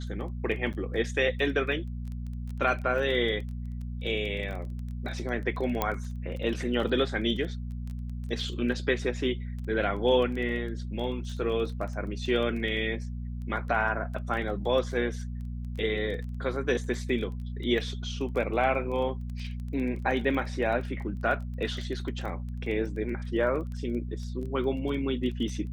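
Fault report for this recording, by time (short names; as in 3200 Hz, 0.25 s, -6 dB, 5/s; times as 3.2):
crackle 15/s -35 dBFS
hum 60 Hz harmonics 4 -35 dBFS
0.73–0.74 gap 7.7 ms
5.82 pop -12 dBFS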